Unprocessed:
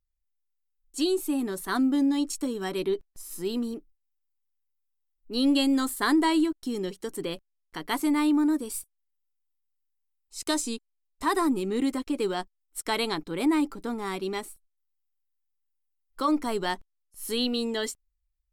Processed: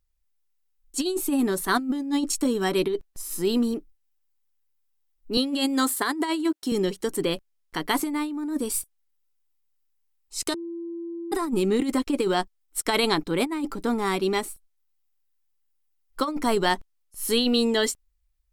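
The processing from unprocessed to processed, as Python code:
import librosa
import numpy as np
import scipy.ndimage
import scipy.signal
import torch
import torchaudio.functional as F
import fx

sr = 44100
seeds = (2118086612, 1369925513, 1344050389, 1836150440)

y = fx.highpass(x, sr, hz=260.0, slope=12, at=(5.37, 6.72))
y = fx.edit(y, sr, fx.bleep(start_s=10.54, length_s=0.78, hz=338.0, db=-17.0), tone=tone)
y = fx.over_compress(y, sr, threshold_db=-27.0, ratio=-0.5)
y = y * 10.0 ** (4.0 / 20.0)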